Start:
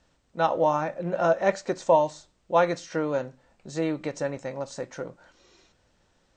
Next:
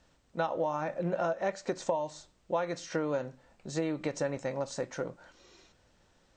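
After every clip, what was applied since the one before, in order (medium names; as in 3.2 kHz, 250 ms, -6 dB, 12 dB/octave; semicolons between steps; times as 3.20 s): compression 12:1, threshold -27 dBFS, peak gain reduction 13.5 dB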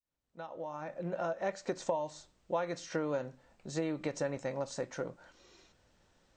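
fade-in on the opening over 1.57 s; trim -2.5 dB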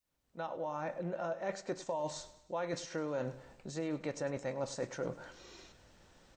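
reverse; compression 6:1, threshold -41 dBFS, peak gain reduction 14 dB; reverse; feedback delay 102 ms, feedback 49%, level -17 dB; trim +6.5 dB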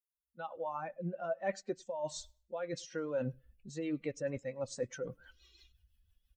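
expander on every frequency bin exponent 2; rotary cabinet horn 1.2 Hz, later 6 Hz, at 3.87 s; trim +6.5 dB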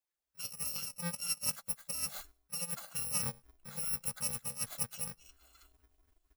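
bit-reversed sample order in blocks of 128 samples; sweeping bell 4.2 Hz 560–1700 Hz +7 dB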